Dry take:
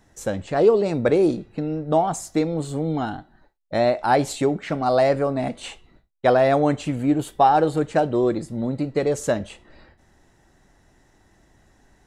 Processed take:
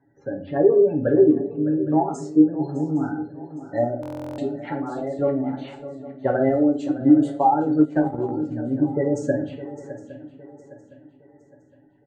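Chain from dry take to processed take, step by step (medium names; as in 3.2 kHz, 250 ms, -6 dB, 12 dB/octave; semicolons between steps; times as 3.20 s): level-controlled noise filter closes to 1.8 kHz, open at -17 dBFS; spectral gate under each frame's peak -20 dB strong; treble shelf 2.7 kHz -9 dB; comb 7.2 ms, depth 65%; in parallel at +0.5 dB: level held to a coarse grid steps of 18 dB; on the sum: cabinet simulation 150–8700 Hz, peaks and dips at 190 Hz -7 dB, 450 Hz -6 dB, 700 Hz -8 dB, 1.1 kHz -9 dB, 2.7 kHz -5 dB; 4.31–5.19 s: compression, threshold -25 dBFS, peak gain reduction 13 dB; 6.49–7.01 s: static phaser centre 420 Hz, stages 4; on a send: shuffle delay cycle 812 ms, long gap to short 3:1, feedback 36%, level -14.5 dB; on the sum: simulated room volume 41 m³, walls mixed, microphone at 0.45 m; 7.81–8.31 s: transient shaper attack +1 dB, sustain -11 dB; buffer glitch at 4.01 s, samples 1024, times 15; trim -4.5 dB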